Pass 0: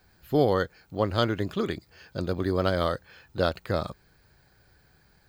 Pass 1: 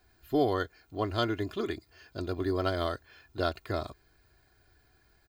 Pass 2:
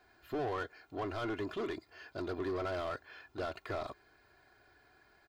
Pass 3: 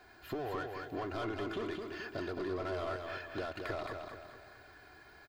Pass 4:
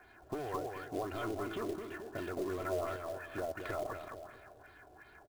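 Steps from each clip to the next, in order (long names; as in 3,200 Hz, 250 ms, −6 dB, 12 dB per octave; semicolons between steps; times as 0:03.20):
comb filter 2.9 ms, depth 66%; level −5.5 dB
brickwall limiter −21 dBFS, peak gain reduction 7 dB; mid-hump overdrive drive 22 dB, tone 1,400 Hz, clips at −21 dBFS; level −7.5 dB
downward compressor, threshold −44 dBFS, peak gain reduction 11 dB; on a send: repeating echo 218 ms, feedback 43%, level −5 dB; on the sum: level +7 dB
auto-filter low-pass sine 2.8 Hz 570–4,200 Hz; high-frequency loss of the air 290 metres; floating-point word with a short mantissa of 2 bits; level −1 dB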